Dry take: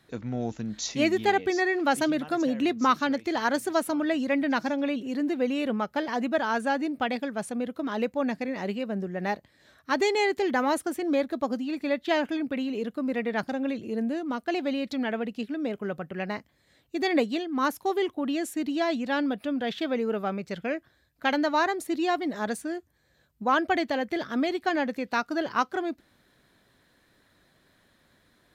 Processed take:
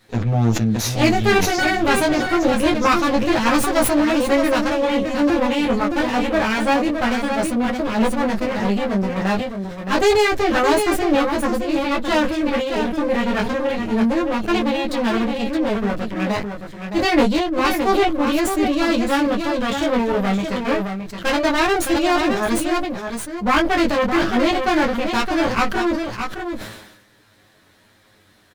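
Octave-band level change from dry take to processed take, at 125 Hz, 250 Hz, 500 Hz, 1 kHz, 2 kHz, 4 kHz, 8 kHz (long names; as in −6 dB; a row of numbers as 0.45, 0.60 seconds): +16.5, +9.0, +9.0, +8.5, +9.0, +10.5, +12.0 decibels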